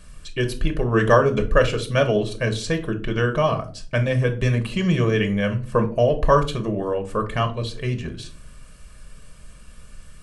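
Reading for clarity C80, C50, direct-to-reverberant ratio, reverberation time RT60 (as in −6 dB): 20.0 dB, 13.5 dB, 5.0 dB, 0.40 s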